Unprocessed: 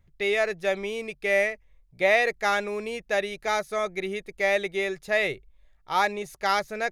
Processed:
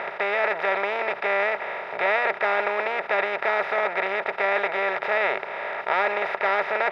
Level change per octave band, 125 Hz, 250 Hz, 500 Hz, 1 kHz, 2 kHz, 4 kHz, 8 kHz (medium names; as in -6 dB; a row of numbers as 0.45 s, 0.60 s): no reading, -4.5 dB, +1.0 dB, +4.0 dB, +3.5 dB, -2.5 dB, under -15 dB